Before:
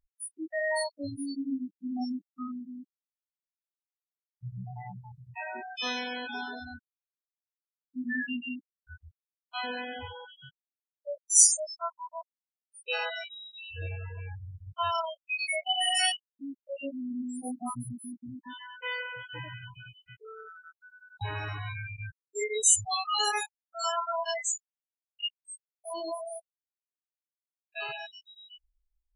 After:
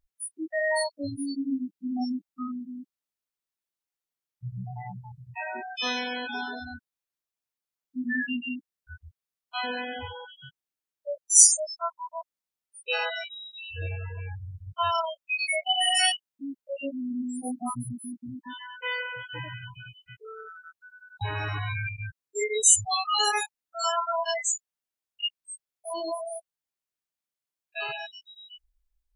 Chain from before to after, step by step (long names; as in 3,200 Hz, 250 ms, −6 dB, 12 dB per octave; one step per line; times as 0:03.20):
0:21.37–0:21.89: envelope flattener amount 100%
level +3.5 dB